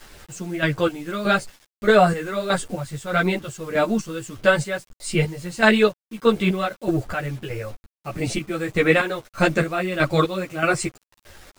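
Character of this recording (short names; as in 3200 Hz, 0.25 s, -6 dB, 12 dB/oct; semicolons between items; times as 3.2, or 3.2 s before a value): chopped level 1.6 Hz, depth 65%, duty 40%; a quantiser's noise floor 8-bit, dither none; a shimmering, thickened sound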